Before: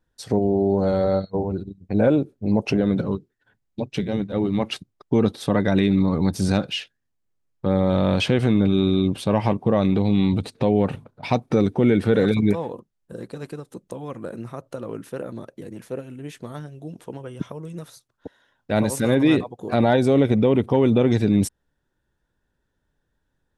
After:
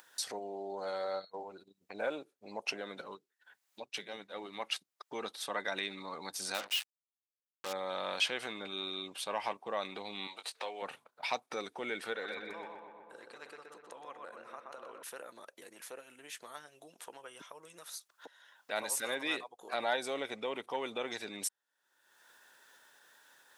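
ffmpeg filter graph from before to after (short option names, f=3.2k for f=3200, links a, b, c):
-filter_complex "[0:a]asettb=1/sr,asplit=3[a][b][c];[a]atrim=end=6.544[d];[b]atrim=start=6.54:end=7.73,asetpts=PTS-STARTPTS,afade=t=in:d=0.004:c=qsin,afade=t=out:st=1.186:d=0.004:c=qsin,bandreject=f=50:t=h:w=6,bandreject=f=100:t=h:w=6,bandreject=f=150:t=h:w=6,bandreject=f=200:t=h:w=6,bandreject=f=250:t=h:w=6,bandreject=f=300:t=h:w=6,bandreject=f=350:t=h:w=6,bandreject=f=400:t=h:w=6,bandreject=f=450:t=h:w=6,acrusher=bits=4:mix=0:aa=0.5[e];[c]atrim=start=7.726[f];[d][e]acrossfade=d=0.004:c1=hsin:c2=qsin[g];[g][f]acrossfade=d=0.004:c1=qsin:c2=hsin,asettb=1/sr,asplit=3[h][i][j];[h]atrim=end=10.274[k];[i]atrim=start=10.27:end=10.82,asetpts=PTS-STARTPTS,afade=t=in:d=0.004:c=qsin,afade=t=out:st=0.546:d=0.004:c=qsin,highpass=500,asplit=2[l][m];[m]adelay=20,volume=-8.5dB[n];[l][n]amix=inputs=2:normalize=0,atrim=end_sample=24255[o];[j]atrim=start=10.816[p];[k][o]acrossfade=d=0.004:c1=hsin:c2=qsin[q];[q][p]acrossfade=d=0.004:c1=qsin:c2=hsin,asettb=1/sr,asplit=3[r][s][t];[r]atrim=end=12.134[u];[s]atrim=start=12.13:end=15.03,asetpts=PTS-STARTPTS,afade=t=in:d=0.004:c=qsin,afade=t=out:st=2.896:d=0.004:c=qsin,highpass=f=950:p=1,aemphasis=mode=reproduction:type=riaa,asplit=2[v][w];[w]adelay=124,lowpass=f=2.9k:p=1,volume=-3.5dB,asplit=2[x][y];[y]adelay=124,lowpass=f=2.9k:p=1,volume=0.55,asplit=2[z][aa];[aa]adelay=124,lowpass=f=2.9k:p=1,volume=0.55,asplit=2[ab][ac];[ac]adelay=124,lowpass=f=2.9k:p=1,volume=0.55,asplit=2[ad][ae];[ae]adelay=124,lowpass=f=2.9k:p=1,volume=0.55,asplit=2[af][ag];[ag]adelay=124,lowpass=f=2.9k:p=1,volume=0.55,asplit=2[ah][ai];[ai]adelay=124,lowpass=f=2.9k:p=1,volume=0.55,asplit=2[aj][ak];[ak]adelay=124,lowpass=f=2.9k:p=1,volume=0.55[al];[v][x][z][ab][ad][af][ah][aj][al]amix=inputs=9:normalize=0,atrim=end_sample=127890[am];[t]atrim=start=15.026[an];[u][am]acrossfade=d=0.004:c1=hsin:c2=qsin[ao];[ao][an]acrossfade=d=0.004:c1=qsin:c2=hsin,acompressor=mode=upward:threshold=-25dB:ratio=2.5,highpass=940,highshelf=f=5.5k:g=4.5,volume=-6.5dB"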